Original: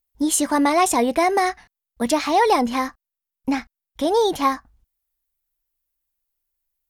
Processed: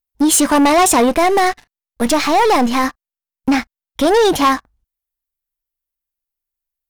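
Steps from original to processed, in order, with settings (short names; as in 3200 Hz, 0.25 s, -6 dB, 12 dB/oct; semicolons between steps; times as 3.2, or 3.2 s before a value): 1.09–2.84 half-wave gain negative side -7 dB; sample leveller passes 3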